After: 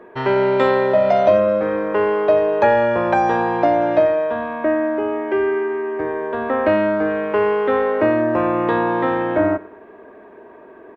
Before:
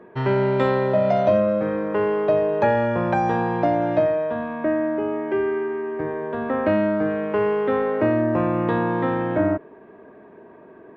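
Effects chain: peaking EQ 150 Hz -13 dB 1.2 oct; feedback delay 97 ms, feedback 40%, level -20 dB; trim +5.5 dB

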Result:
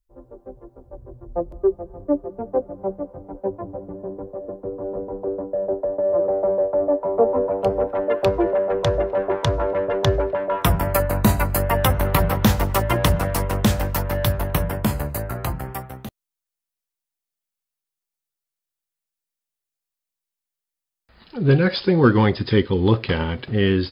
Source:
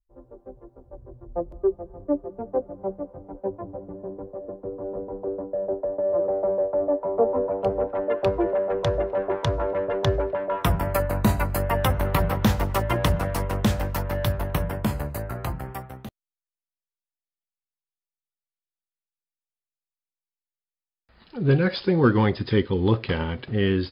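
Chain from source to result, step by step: treble shelf 5.9 kHz +3.5 dB, from 7.06 s +12 dB, from 8.48 s +6 dB; trim +3.5 dB

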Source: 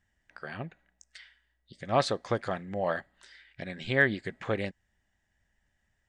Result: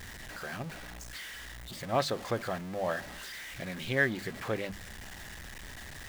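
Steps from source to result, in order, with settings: jump at every zero crossing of -34.5 dBFS; hum notches 50/100/150/200 Hz; trim -4 dB

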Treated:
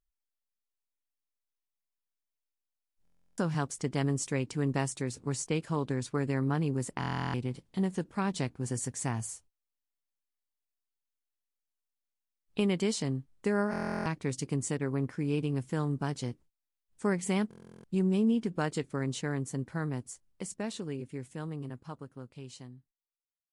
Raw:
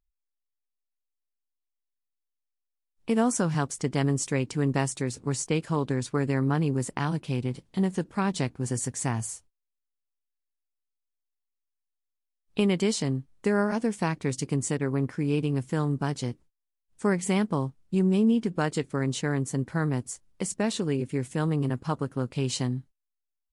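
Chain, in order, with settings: fade out at the end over 4.88 s; buffer glitch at 3.03/6.99/13.71/17.49 s, samples 1024, times 14; trim -4.5 dB

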